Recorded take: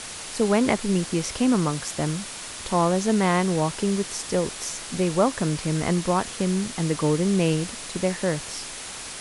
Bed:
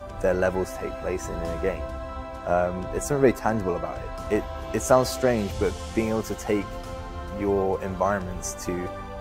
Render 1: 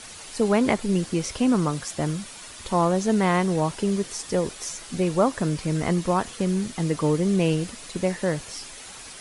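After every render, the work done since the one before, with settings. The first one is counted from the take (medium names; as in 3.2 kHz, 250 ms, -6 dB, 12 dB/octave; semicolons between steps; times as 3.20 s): noise reduction 8 dB, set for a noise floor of -37 dBFS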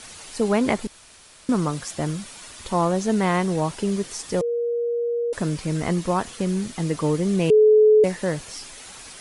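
0.87–1.49 s: room tone; 4.41–5.33 s: bleep 473 Hz -21 dBFS; 7.50–8.04 s: bleep 429 Hz -10.5 dBFS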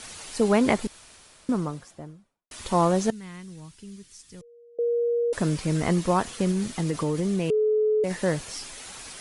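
0.86–2.51 s: studio fade out; 3.10–4.79 s: amplifier tone stack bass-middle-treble 6-0-2; 6.51–8.11 s: compression, threshold -21 dBFS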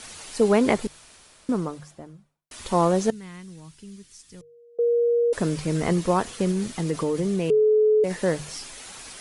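hum notches 50/100/150 Hz; dynamic bell 440 Hz, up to +4 dB, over -37 dBFS, Q 2.4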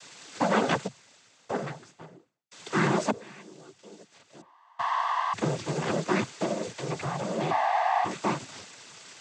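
full-wave rectifier; noise-vocoded speech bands 16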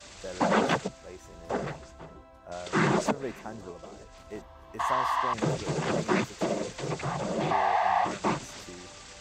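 add bed -17 dB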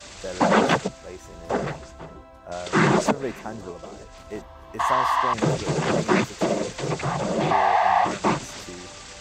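trim +6 dB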